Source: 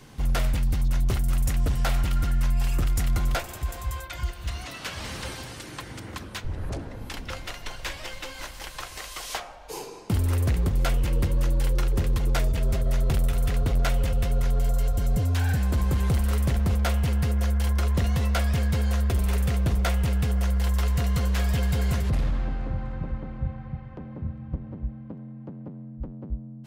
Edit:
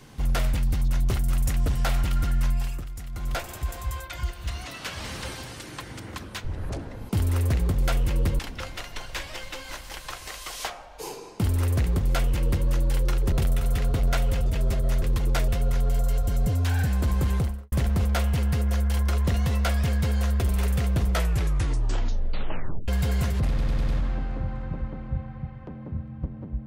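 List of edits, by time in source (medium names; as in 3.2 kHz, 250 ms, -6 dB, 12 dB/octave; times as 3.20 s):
2.49–3.47 s: dip -12.5 dB, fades 0.35 s
10.06–11.36 s: copy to 7.09 s
12.02–12.48 s: swap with 13.04–14.18 s
16.00–16.42 s: studio fade out
19.78 s: tape stop 1.80 s
22.18 s: stutter 0.10 s, 5 plays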